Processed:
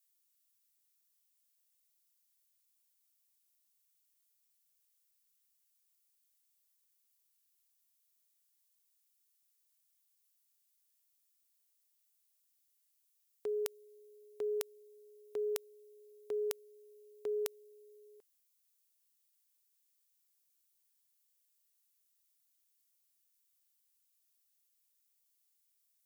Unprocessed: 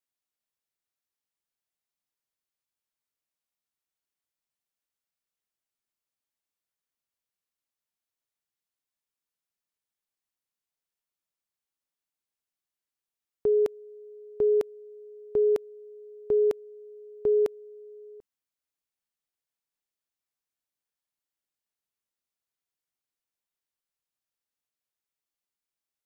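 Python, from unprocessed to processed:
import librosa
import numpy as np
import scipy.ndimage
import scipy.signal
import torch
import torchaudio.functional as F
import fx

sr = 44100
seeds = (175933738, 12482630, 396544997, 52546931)

y = np.diff(x, prepend=0.0)
y = y * librosa.db_to_amplitude(11.0)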